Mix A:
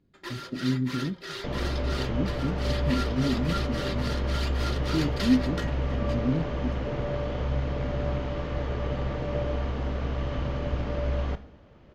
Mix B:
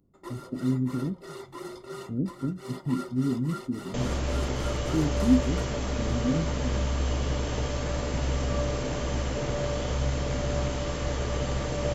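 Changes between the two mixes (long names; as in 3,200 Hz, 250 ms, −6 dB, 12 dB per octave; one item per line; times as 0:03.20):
first sound: add Savitzky-Golay smoothing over 65 samples
second sound: entry +2.50 s
master: remove high-frequency loss of the air 290 metres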